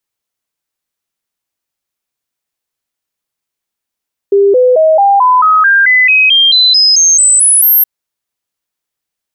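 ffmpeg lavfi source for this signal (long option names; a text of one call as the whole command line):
ffmpeg -f lavfi -i "aevalsrc='0.631*clip(min(mod(t,0.22),0.22-mod(t,0.22))/0.005,0,1)*sin(2*PI*399*pow(2,floor(t/0.22)/3)*mod(t,0.22))':duration=3.52:sample_rate=44100" out.wav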